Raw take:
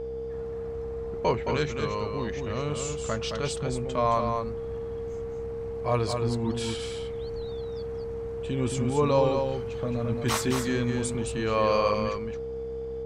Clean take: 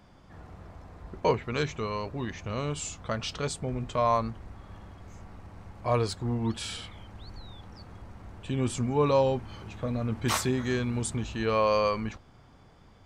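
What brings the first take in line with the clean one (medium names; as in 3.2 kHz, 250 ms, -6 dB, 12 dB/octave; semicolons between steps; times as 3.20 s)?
de-hum 65 Hz, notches 13; band-stop 460 Hz, Q 30; inverse comb 219 ms -5.5 dB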